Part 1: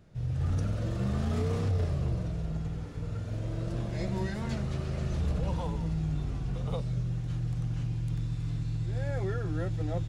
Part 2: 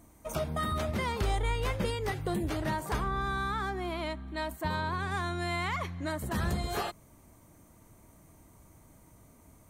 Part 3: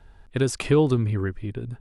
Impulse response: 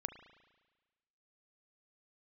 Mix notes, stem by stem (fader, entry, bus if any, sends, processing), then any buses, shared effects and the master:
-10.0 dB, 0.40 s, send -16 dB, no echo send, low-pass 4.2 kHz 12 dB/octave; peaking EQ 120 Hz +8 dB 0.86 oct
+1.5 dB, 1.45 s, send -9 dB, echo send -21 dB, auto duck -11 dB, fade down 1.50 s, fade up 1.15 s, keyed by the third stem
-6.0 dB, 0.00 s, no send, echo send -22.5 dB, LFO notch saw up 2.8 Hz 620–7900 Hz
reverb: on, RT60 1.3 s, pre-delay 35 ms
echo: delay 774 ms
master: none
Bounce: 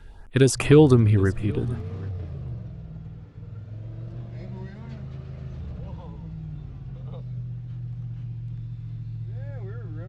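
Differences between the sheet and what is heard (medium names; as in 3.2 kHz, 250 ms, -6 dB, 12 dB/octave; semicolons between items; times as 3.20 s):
stem 2: muted; stem 3 -6.0 dB -> +5.5 dB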